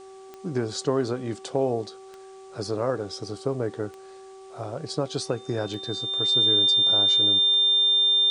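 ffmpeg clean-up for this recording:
-af "adeclick=t=4,bandreject=f=383.8:t=h:w=4,bandreject=f=767.6:t=h:w=4,bandreject=f=1151.4:t=h:w=4,bandreject=f=3600:w=30,agate=range=0.0891:threshold=0.0141"

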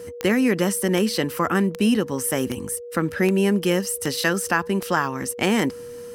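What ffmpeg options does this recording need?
-af "adeclick=t=4,bandreject=f=480:w=30"

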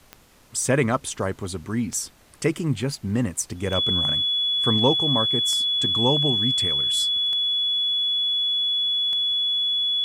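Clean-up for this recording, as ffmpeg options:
-af "adeclick=t=4,bandreject=f=3400:w=30,agate=range=0.0891:threshold=0.00891"

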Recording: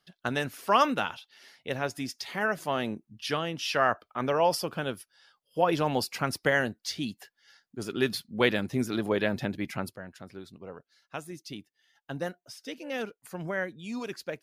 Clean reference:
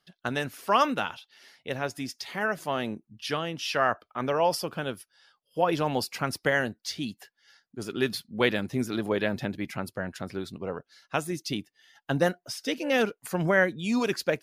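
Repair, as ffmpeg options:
-af "asetnsamples=n=441:p=0,asendcmd='9.96 volume volume 9.5dB',volume=1"

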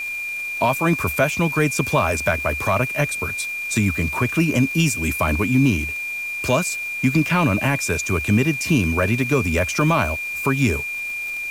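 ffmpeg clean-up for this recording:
-af "adeclick=t=4,bandreject=f=2400:w=30,afwtdn=0.0071"

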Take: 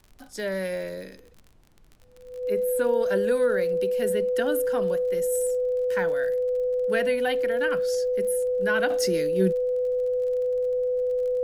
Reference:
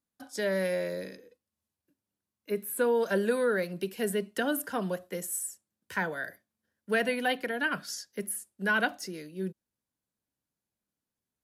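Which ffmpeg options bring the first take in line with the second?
-af "adeclick=t=4,bandreject=f=500:w=30,agate=range=0.0891:threshold=0.00708,asetnsamples=n=441:p=0,asendcmd='8.9 volume volume -11dB',volume=1"

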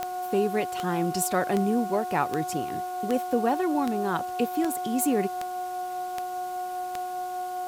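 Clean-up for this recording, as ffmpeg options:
-af "adeclick=t=4,bandreject=f=362.5:t=h:w=4,bandreject=f=725:t=h:w=4,bandreject=f=1087.5:t=h:w=4,bandreject=f=1450:t=h:w=4,bandreject=f=730:w=30,afwtdn=0.0035"

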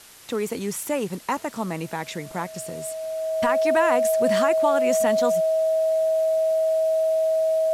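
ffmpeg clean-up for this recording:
-af "bandreject=f=640:w=30,afwtdn=0.005"

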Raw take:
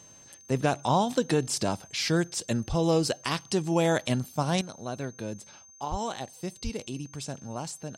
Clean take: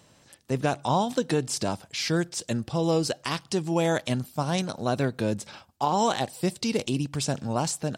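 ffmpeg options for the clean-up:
-filter_complex "[0:a]bandreject=f=6300:w=30,asplit=3[s0][s1][s2];[s0]afade=t=out:st=2.68:d=0.02[s3];[s1]highpass=f=140:w=0.5412,highpass=f=140:w=1.3066,afade=t=in:st=2.68:d=0.02,afade=t=out:st=2.8:d=0.02[s4];[s2]afade=t=in:st=2.8:d=0.02[s5];[s3][s4][s5]amix=inputs=3:normalize=0,asplit=3[s6][s7][s8];[s6]afade=t=out:st=5.9:d=0.02[s9];[s7]highpass=f=140:w=0.5412,highpass=f=140:w=1.3066,afade=t=in:st=5.9:d=0.02,afade=t=out:st=6.02:d=0.02[s10];[s8]afade=t=in:st=6.02:d=0.02[s11];[s9][s10][s11]amix=inputs=3:normalize=0,asplit=3[s12][s13][s14];[s12]afade=t=out:st=6.63:d=0.02[s15];[s13]highpass=f=140:w=0.5412,highpass=f=140:w=1.3066,afade=t=in:st=6.63:d=0.02,afade=t=out:st=6.75:d=0.02[s16];[s14]afade=t=in:st=6.75:d=0.02[s17];[s15][s16][s17]amix=inputs=3:normalize=0,asetnsamples=n=441:p=0,asendcmd='4.61 volume volume 9dB',volume=1"

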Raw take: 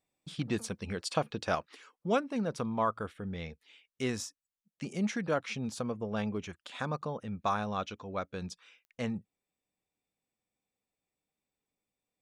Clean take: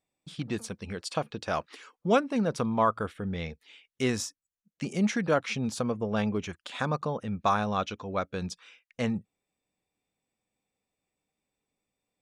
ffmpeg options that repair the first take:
-af "adeclick=t=4,asetnsamples=n=441:p=0,asendcmd='1.55 volume volume 5.5dB',volume=1"

